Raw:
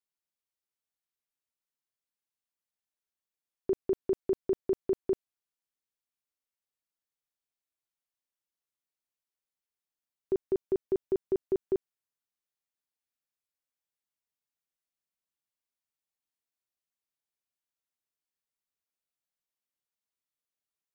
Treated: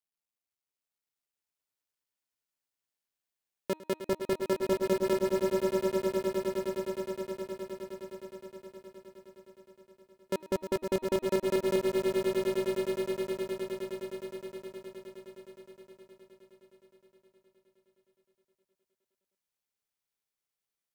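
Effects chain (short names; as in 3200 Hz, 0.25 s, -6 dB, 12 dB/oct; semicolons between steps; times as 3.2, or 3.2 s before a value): cycle switcher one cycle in 2, muted; de-hum 313.8 Hz, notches 13; on a send: swelling echo 0.104 s, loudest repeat 8, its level -8 dB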